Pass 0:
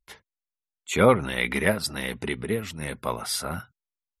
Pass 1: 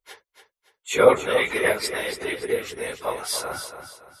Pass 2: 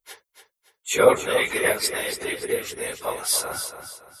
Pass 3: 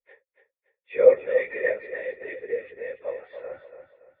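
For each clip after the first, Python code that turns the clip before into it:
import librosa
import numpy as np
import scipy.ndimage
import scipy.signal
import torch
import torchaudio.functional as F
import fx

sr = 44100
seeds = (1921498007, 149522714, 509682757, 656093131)

y1 = fx.phase_scramble(x, sr, seeds[0], window_ms=50)
y1 = fx.low_shelf_res(y1, sr, hz=290.0, db=-11.5, q=1.5)
y1 = fx.echo_feedback(y1, sr, ms=284, feedback_pct=36, wet_db=-9.0)
y1 = F.gain(torch.from_numpy(y1), 1.5).numpy()
y2 = fx.high_shelf(y1, sr, hz=6400.0, db=11.0)
y2 = F.gain(torch.from_numpy(y2), -1.0).numpy()
y3 = fx.formant_cascade(y2, sr, vowel='e')
y3 = F.gain(torch.from_numpy(y3), 4.0).numpy()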